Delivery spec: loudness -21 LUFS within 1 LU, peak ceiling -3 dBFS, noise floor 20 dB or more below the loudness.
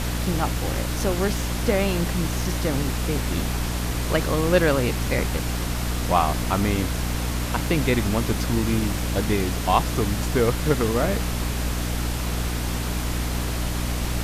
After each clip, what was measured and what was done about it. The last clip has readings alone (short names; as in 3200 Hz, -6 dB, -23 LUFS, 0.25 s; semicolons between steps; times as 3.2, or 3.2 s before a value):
hum 60 Hz; harmonics up to 300 Hz; hum level -24 dBFS; noise floor -27 dBFS; noise floor target -44 dBFS; loudness -24.0 LUFS; peak -4.5 dBFS; loudness target -21.0 LUFS
-> de-hum 60 Hz, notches 5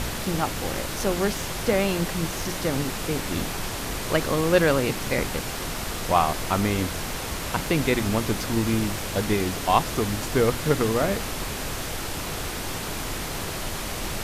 hum none; noise floor -32 dBFS; noise floor target -46 dBFS
-> noise print and reduce 14 dB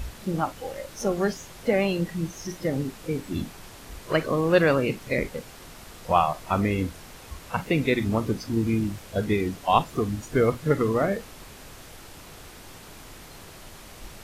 noise floor -46 dBFS; loudness -26.0 LUFS; peak -5.5 dBFS; loudness target -21.0 LUFS
-> gain +5 dB; limiter -3 dBFS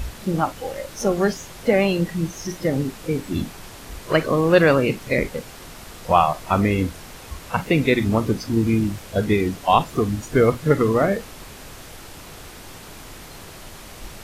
loudness -21.0 LUFS; peak -3.0 dBFS; noise floor -41 dBFS